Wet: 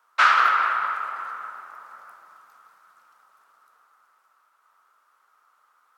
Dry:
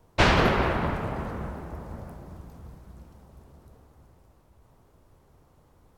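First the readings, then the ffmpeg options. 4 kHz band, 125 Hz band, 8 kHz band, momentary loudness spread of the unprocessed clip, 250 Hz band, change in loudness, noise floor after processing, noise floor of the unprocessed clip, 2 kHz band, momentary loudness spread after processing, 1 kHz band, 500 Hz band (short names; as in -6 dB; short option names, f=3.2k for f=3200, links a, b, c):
-1.0 dB, under -40 dB, n/a, 23 LU, under -25 dB, +5.0 dB, -66 dBFS, -61 dBFS, +6.0 dB, 20 LU, +7.0 dB, -15.5 dB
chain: -af "highpass=f=1.3k:t=q:w=7.6,volume=-2.5dB"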